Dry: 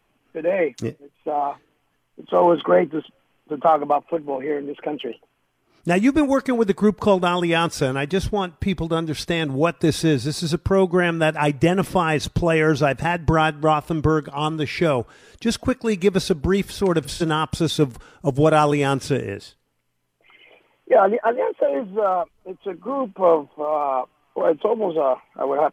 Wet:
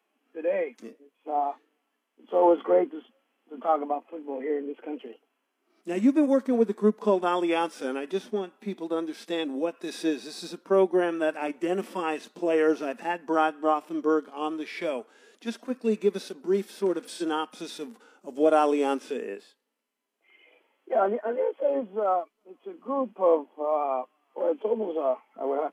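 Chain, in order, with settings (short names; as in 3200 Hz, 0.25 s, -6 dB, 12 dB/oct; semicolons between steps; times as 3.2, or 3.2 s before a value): harmonic-percussive split percussive -16 dB; elliptic high-pass 220 Hz, stop band 40 dB; gain -2.5 dB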